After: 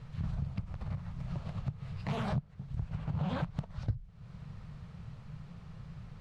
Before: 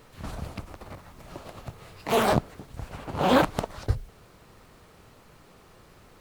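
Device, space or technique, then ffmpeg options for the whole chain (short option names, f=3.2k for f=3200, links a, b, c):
jukebox: -af "lowpass=5k,lowshelf=f=220:t=q:w=3:g=12,acompressor=threshold=-28dB:ratio=5,volume=-4.5dB"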